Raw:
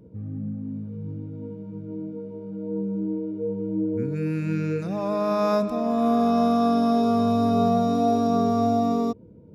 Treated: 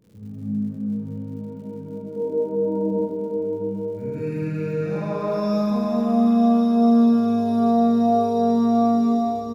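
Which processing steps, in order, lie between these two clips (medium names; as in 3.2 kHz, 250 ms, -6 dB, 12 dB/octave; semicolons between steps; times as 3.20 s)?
compression, threshold -24 dBFS, peak gain reduction 7.5 dB; 2.16–2.92 s: high-order bell 510 Hz +11 dB 2.4 oct; flange 0.26 Hz, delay 9.7 ms, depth 3.3 ms, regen -82%; 4.34–5.28 s: treble shelf 5.9 kHz -8.5 dB; multi-tap echo 43/629 ms -9.5/-11.5 dB; Schroeder reverb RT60 3.1 s, combs from 30 ms, DRR -9 dB; level rider gain up to 4.5 dB; crackle 160 per s -41 dBFS; trim -6.5 dB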